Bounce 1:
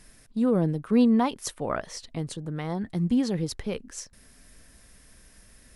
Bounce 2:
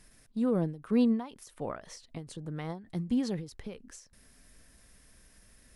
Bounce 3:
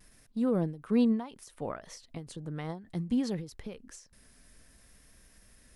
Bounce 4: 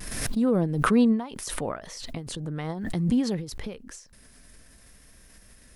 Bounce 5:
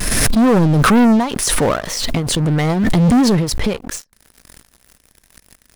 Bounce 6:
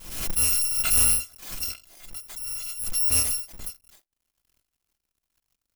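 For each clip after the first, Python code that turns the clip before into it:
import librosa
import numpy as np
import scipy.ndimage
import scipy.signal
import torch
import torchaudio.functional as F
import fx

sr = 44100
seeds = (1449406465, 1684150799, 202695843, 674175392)

y1 = fx.end_taper(x, sr, db_per_s=130.0)
y1 = y1 * librosa.db_to_amplitude(-5.0)
y2 = fx.vibrato(y1, sr, rate_hz=0.63, depth_cents=23.0)
y3 = fx.pre_swell(y2, sr, db_per_s=41.0)
y3 = y3 * librosa.db_to_amplitude(5.0)
y4 = fx.leveller(y3, sr, passes=5)
y5 = fx.bit_reversed(y4, sr, seeds[0], block=256)
y5 = fx.upward_expand(y5, sr, threshold_db=-22.0, expansion=2.5)
y5 = y5 * librosa.db_to_amplitude(-8.5)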